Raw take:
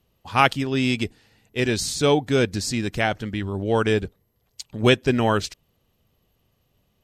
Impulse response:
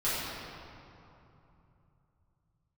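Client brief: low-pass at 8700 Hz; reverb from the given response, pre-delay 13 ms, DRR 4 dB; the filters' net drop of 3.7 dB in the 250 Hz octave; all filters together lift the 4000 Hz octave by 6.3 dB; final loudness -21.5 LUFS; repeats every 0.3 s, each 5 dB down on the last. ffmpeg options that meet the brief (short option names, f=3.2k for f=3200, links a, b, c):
-filter_complex "[0:a]lowpass=8.7k,equalizer=f=250:t=o:g=-4.5,equalizer=f=4k:t=o:g=8.5,aecho=1:1:300|600|900|1200|1500|1800|2100:0.562|0.315|0.176|0.0988|0.0553|0.031|0.0173,asplit=2[a][b];[1:a]atrim=start_sample=2205,adelay=13[c];[b][c]afir=irnorm=-1:irlink=0,volume=-14dB[d];[a][d]amix=inputs=2:normalize=0,volume=-2dB"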